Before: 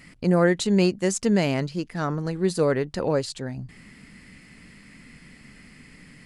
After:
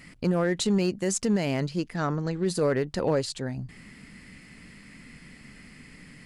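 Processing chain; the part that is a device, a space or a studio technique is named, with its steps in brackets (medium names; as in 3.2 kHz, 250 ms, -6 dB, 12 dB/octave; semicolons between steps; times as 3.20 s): limiter into clipper (peak limiter -15.5 dBFS, peak gain reduction 7.5 dB; hard clipper -17 dBFS, distortion -27 dB); 1.96–2.46 s: Chebyshev low-pass 7.3 kHz, order 4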